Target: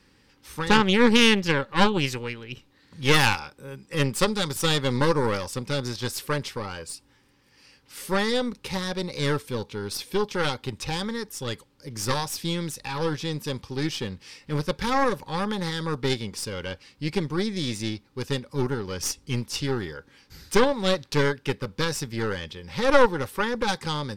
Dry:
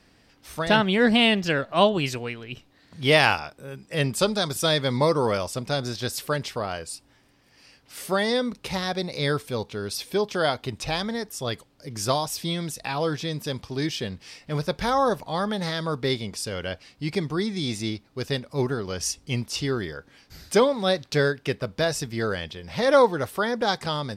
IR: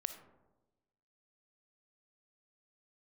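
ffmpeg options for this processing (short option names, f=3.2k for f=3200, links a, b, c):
-af "aeval=exprs='0.668*(cos(1*acos(clip(val(0)/0.668,-1,1)))-cos(1*PI/2))+0.188*(cos(4*acos(clip(val(0)/0.668,-1,1)))-cos(4*PI/2))+0.0188*(cos(8*acos(clip(val(0)/0.668,-1,1)))-cos(8*PI/2))':c=same,asuperstop=centerf=670:order=8:qfactor=3.9,volume=-1dB"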